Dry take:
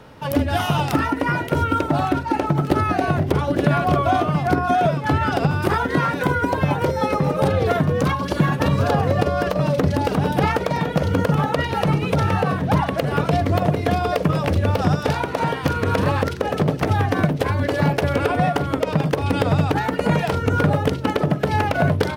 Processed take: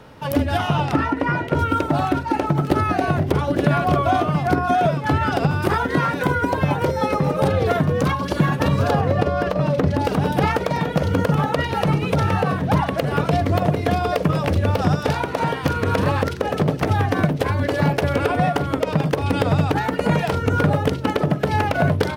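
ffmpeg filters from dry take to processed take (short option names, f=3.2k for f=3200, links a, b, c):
-filter_complex "[0:a]asettb=1/sr,asplit=3[a][b][c];[a]atrim=end=0.574[d];[b]atrim=start=0.57:end=1.59,asetpts=PTS-STARTPTS,afade=t=in:d=0.004:c=qsin,afade=t=out:st=1.016:d=0.004:c=qsin,aemphasis=mode=reproduction:type=50fm[e];[c]atrim=start=1.586[f];[d][e]acrossfade=d=0.004:c1=hsin:c2=qsin[g];[g][f]acrossfade=d=0.004:c1=qsin:c2=hsin,asettb=1/sr,asplit=3[h][i][j];[h]atrim=end=8.994[k];[i]atrim=start=8.99:end=10,asetpts=PTS-STARTPTS,afade=t=in:d=0.004:c=qsin,afade=t=out:st=1.006:d=0.004:c=qsin,highshelf=f=5.4k:g=-9.5[l];[j]atrim=start=9.996[m];[k][l]acrossfade=d=0.004:c1=hsin:c2=qsin[n];[n][m]acrossfade=d=0.004:c1=qsin:c2=hsin"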